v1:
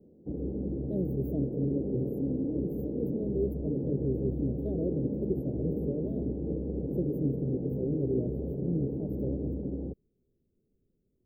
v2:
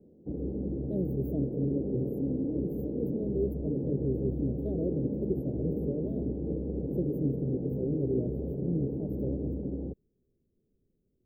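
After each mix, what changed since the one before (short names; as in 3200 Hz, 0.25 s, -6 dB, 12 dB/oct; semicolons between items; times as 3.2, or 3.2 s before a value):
none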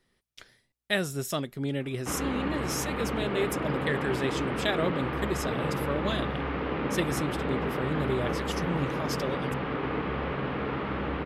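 background: entry +1.80 s; master: remove inverse Chebyshev band-stop 1100–9700 Hz, stop band 50 dB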